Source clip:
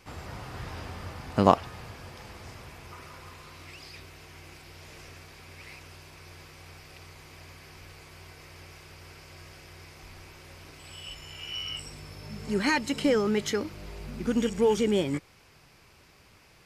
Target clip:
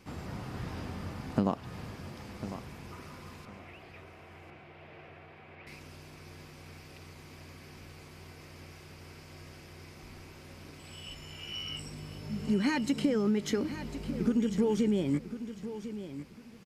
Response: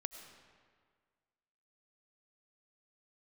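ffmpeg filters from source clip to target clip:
-filter_complex "[0:a]equalizer=frequency=210:width=0.85:gain=10.5,acompressor=threshold=-20dB:ratio=10,asettb=1/sr,asplit=3[link_01][link_02][link_03];[link_01]atrim=end=3.454[link_04];[link_02]atrim=start=3.45:end=5.67,asetpts=PTS-STARTPTS,afade=type=in:duration=0.004:curve=qsin,afade=type=out:start_time=2.216:duration=0.004:curve=qsin,highpass=110,equalizer=frequency=180:width_type=q:width=4:gain=-8,equalizer=frequency=260:width_type=q:width=4:gain=-9,equalizer=frequency=700:width_type=q:width=4:gain=7,lowpass=frequency=2900:width=0.5412,lowpass=frequency=2900:width=1.3066[link_05];[link_03]atrim=start=5.666[link_06];[link_04][link_05]acrossfade=duration=0.004:curve1=hsin:curve2=qsin[link_07];[link_07][link_06]acrossfade=duration=0.004:curve1=qsin:curve2=hsin,aecho=1:1:1050|2100|3150:0.251|0.0603|0.0145,volume=-4dB"

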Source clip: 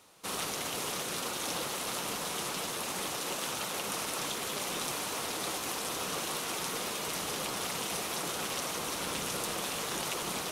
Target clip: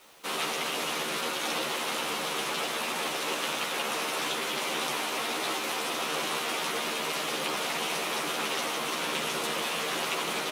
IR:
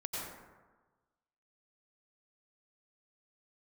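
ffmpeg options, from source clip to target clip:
-filter_complex "[0:a]acrossover=split=170 3200:gain=0.0708 1 0.224[link_01][link_02][link_03];[link_01][link_02][link_03]amix=inputs=3:normalize=0,acrossover=split=2100[link_04][link_05];[link_05]acontrast=85[link_06];[link_04][link_06]amix=inputs=2:normalize=0,acrusher=bits=9:mix=0:aa=0.000001,asplit=2[link_07][link_08];[link_08]adelay=13,volume=-2dB[link_09];[link_07][link_09]amix=inputs=2:normalize=0,asplit=2[link_10][link_11];[1:a]atrim=start_sample=2205[link_12];[link_11][link_12]afir=irnorm=-1:irlink=0,volume=-8dB[link_13];[link_10][link_13]amix=inputs=2:normalize=0"

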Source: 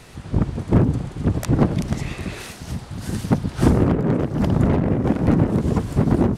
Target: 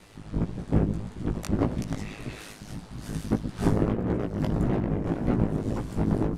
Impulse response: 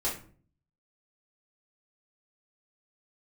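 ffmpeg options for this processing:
-af "aeval=exprs='val(0)*sin(2*PI*52*n/s)':channel_layout=same,flanger=delay=16:depth=3.5:speed=1.7,volume=-2dB"

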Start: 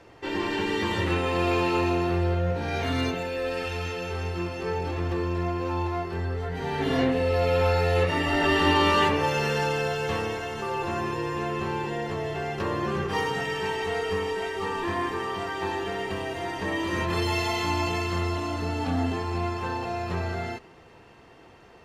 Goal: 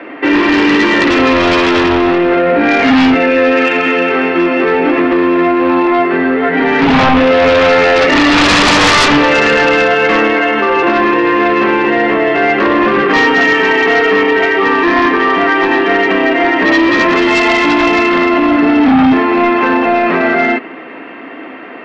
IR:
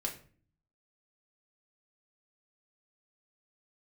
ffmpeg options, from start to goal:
-filter_complex "[0:a]asplit=2[link_01][link_02];[link_02]acrusher=bits=3:mode=log:mix=0:aa=0.000001,volume=-11.5dB[link_03];[link_01][link_03]amix=inputs=2:normalize=0,highpass=frequency=260:width=0.5412,highpass=frequency=260:width=1.3066,equalizer=frequency=270:width_type=q:width=4:gain=9,equalizer=frequency=460:width_type=q:width=4:gain=-6,equalizer=frequency=870:width_type=q:width=4:gain=-8,equalizer=frequency=2100:width_type=q:width=4:gain=4,lowpass=frequency=2600:width=0.5412,lowpass=frequency=2600:width=1.3066,aeval=exprs='0.376*sin(PI/2*4.47*val(0)/0.376)':channel_layout=same,bandreject=frequency=370:width=12,alimiter=level_in=9dB:limit=-1dB:release=50:level=0:latency=1,volume=-3dB"

